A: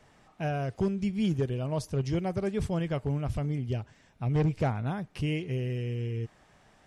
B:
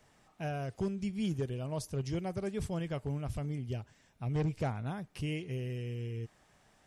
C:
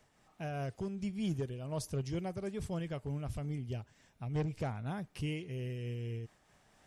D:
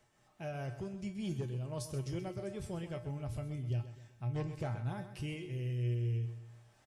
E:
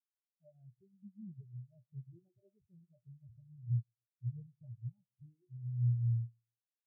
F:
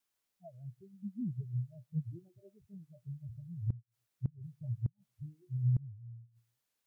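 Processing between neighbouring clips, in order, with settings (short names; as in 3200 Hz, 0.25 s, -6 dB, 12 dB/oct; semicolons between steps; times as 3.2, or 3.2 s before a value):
high shelf 6500 Hz +9.5 dB; gain -6 dB
in parallel at -9.5 dB: soft clip -35 dBFS, distortion -11 dB; on the sum: noise-modulated level, depth 60%; gain -1 dB
resonator 120 Hz, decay 0.3 s, harmonics odd, mix 80%; on a send: feedback echo 0.129 s, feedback 44%, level -12 dB; on the sum: gain +8 dB
in parallel at +1.5 dB: compressor, threshold -46 dBFS, peak gain reduction 14.5 dB; on the sum: spectral expander 4:1
flipped gate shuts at -34 dBFS, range -28 dB; record warp 78 rpm, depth 250 cents; gain +11.5 dB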